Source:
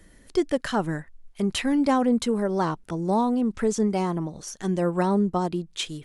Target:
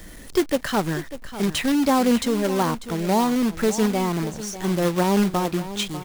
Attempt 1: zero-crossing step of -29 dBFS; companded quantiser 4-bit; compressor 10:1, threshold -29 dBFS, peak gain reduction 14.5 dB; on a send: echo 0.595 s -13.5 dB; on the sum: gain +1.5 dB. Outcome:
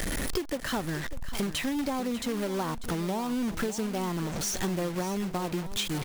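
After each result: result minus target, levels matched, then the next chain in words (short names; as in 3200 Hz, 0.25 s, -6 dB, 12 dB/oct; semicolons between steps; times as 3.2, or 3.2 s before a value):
compressor: peak gain reduction +14.5 dB; zero-crossing step: distortion +10 dB
zero-crossing step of -29 dBFS; companded quantiser 4-bit; on a send: echo 0.595 s -13.5 dB; on the sum: gain +1.5 dB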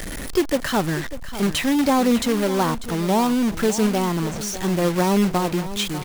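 zero-crossing step: distortion +10 dB
zero-crossing step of -40 dBFS; companded quantiser 4-bit; on a send: echo 0.595 s -13.5 dB; on the sum: gain +1.5 dB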